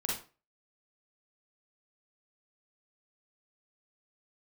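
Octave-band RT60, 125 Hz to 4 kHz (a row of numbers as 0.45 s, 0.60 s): 0.35 s, 0.35 s, 0.35 s, 0.35 s, 0.30 s, 0.30 s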